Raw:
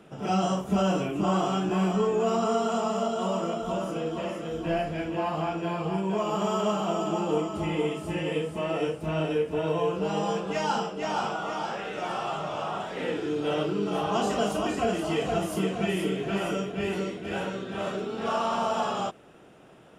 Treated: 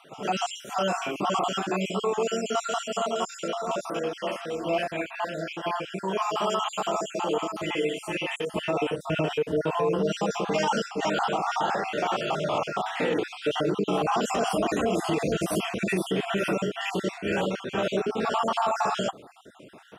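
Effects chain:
time-frequency cells dropped at random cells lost 42%
high-pass filter 730 Hz 6 dB per octave, from 0:08.54 120 Hz
brickwall limiter −24 dBFS, peak gain reduction 8 dB
level +7.5 dB

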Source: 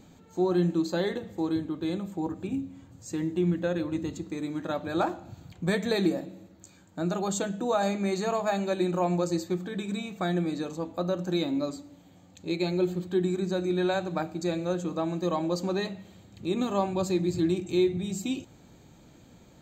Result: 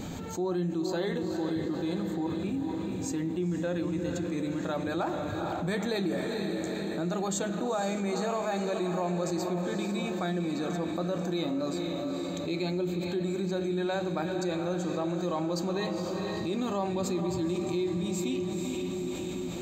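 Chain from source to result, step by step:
on a send: feedback delay with all-pass diffusion 467 ms, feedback 53%, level −8 dB
on the sum: envelope flattener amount 70%
level −8 dB

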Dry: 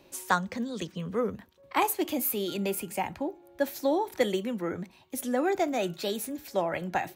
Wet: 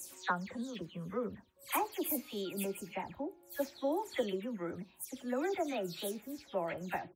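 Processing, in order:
every frequency bin delayed by itself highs early, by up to 155 ms
level −7.5 dB

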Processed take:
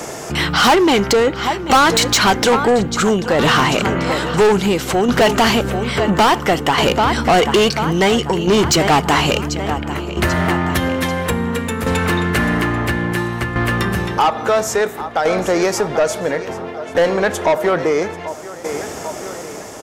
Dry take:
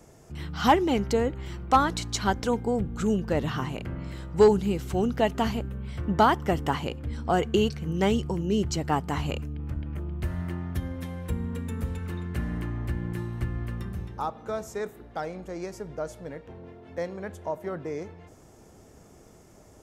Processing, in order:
repeating echo 789 ms, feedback 49%, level −17 dB
shaped tremolo saw down 0.59 Hz, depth 70%
mid-hump overdrive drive 29 dB, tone 7,300 Hz, clips at −9 dBFS
in parallel at +2 dB: downward compressor, threshold −25 dBFS, peak gain reduction 11.5 dB
on the sum: level +1.5 dB

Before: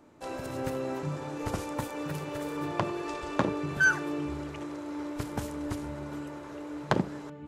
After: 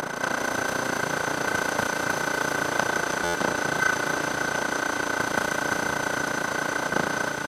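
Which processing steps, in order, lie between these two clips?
compressor on every frequency bin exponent 0.2
bass and treble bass −10 dB, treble +3 dB
amplitude modulation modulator 29 Hz, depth 95%
pitch-shifted copies added −3 semitones −11 dB, +5 semitones −14 dB
on a send: delay with a high-pass on its return 163 ms, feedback 80%, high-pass 3,100 Hz, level −5 dB
on the sum: downsampling to 32,000 Hz
buffer that repeats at 0:03.24, samples 512, times 8

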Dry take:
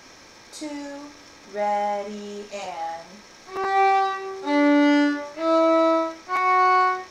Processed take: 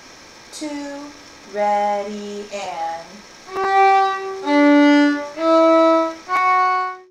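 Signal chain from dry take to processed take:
fade-out on the ending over 0.72 s
hum removal 91.91 Hz, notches 6
level +5.5 dB

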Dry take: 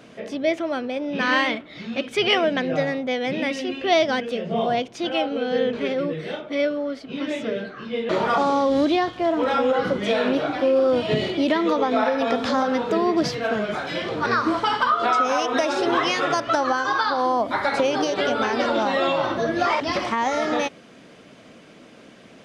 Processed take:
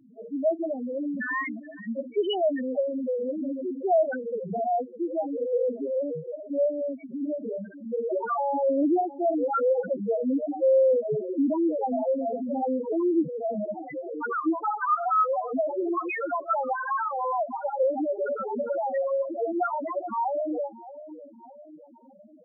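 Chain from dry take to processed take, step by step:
hard clipping −13.5 dBFS, distortion −23 dB
echo with a time of its own for lows and highs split 920 Hz, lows 610 ms, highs 438 ms, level −15 dB
spectral peaks only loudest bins 2

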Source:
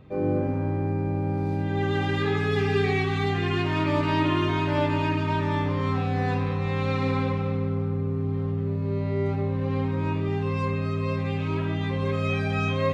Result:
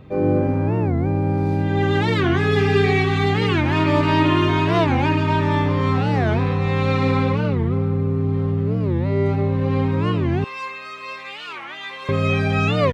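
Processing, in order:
0:10.44–0:12.09: high-pass filter 1,200 Hz 12 dB per octave
wow of a warped record 45 rpm, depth 250 cents
level +6.5 dB

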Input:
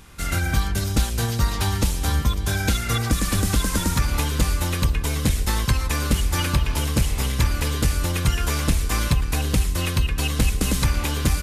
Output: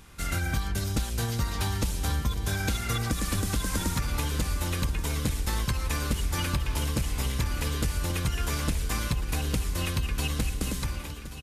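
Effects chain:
fade-out on the ending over 1.15 s
downward compressor, threshold −19 dBFS, peak gain reduction 6 dB
on a send: repeating echo 1,131 ms, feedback 41%, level −13.5 dB
on the sum: level −4.5 dB

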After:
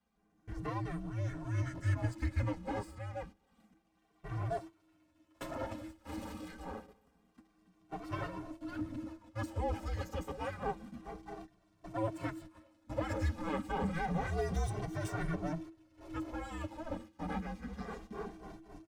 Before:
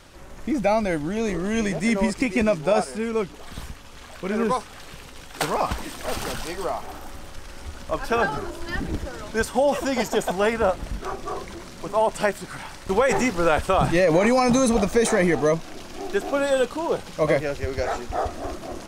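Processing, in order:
lower of the sound and its delayed copy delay 8 ms
noise gate −34 dBFS, range −15 dB
drawn EQ curve 270 Hz 0 dB, 500 Hz −16 dB, 890 Hz 0 dB, 4,600 Hz −11 dB
frequency shifter −330 Hz
barber-pole flanger 2.1 ms −0.28 Hz
level −8 dB

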